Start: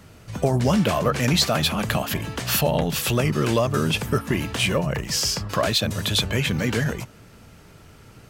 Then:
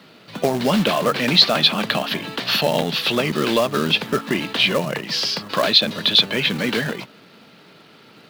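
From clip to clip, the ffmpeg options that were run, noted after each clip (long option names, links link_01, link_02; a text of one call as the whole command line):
ffmpeg -i in.wav -filter_complex "[0:a]highpass=frequency=180:width=0.5412,highpass=frequency=180:width=1.3066,highshelf=frequency=5600:width_type=q:width=3:gain=-12,acrossover=split=1800[link_01][link_02];[link_01]acrusher=bits=3:mode=log:mix=0:aa=0.000001[link_03];[link_03][link_02]amix=inputs=2:normalize=0,volume=2.5dB" out.wav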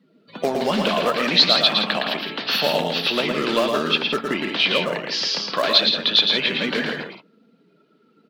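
ffmpeg -i in.wav -filter_complex "[0:a]afftdn=noise_reduction=23:noise_floor=-40,equalizer=frequency=110:width=1.4:gain=-14.5,asplit=2[link_01][link_02];[link_02]aecho=0:1:113|166:0.596|0.355[link_03];[link_01][link_03]amix=inputs=2:normalize=0,volume=-2dB" out.wav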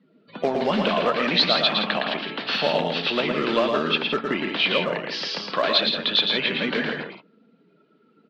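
ffmpeg -i in.wav -af "lowpass=3600,volume=-1dB" out.wav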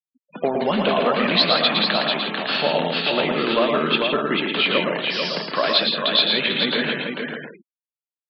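ffmpeg -i in.wav -af "aecho=1:1:443:0.562,afftfilt=real='re*gte(hypot(re,im),0.02)':imag='im*gte(hypot(re,im),0.02)':win_size=1024:overlap=0.75,volume=1.5dB" out.wav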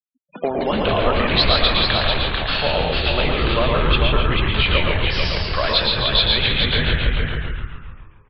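ffmpeg -i in.wav -filter_complex "[0:a]afftfilt=real='re*gte(hypot(re,im),0.01)':imag='im*gte(hypot(re,im),0.01)':win_size=1024:overlap=0.75,asplit=9[link_01][link_02][link_03][link_04][link_05][link_06][link_07][link_08][link_09];[link_02]adelay=138,afreqshift=-95,volume=-6dB[link_10];[link_03]adelay=276,afreqshift=-190,volume=-10.3dB[link_11];[link_04]adelay=414,afreqshift=-285,volume=-14.6dB[link_12];[link_05]adelay=552,afreqshift=-380,volume=-18.9dB[link_13];[link_06]adelay=690,afreqshift=-475,volume=-23.2dB[link_14];[link_07]adelay=828,afreqshift=-570,volume=-27.5dB[link_15];[link_08]adelay=966,afreqshift=-665,volume=-31.8dB[link_16];[link_09]adelay=1104,afreqshift=-760,volume=-36.1dB[link_17];[link_01][link_10][link_11][link_12][link_13][link_14][link_15][link_16][link_17]amix=inputs=9:normalize=0,asubboost=boost=11:cutoff=80" out.wav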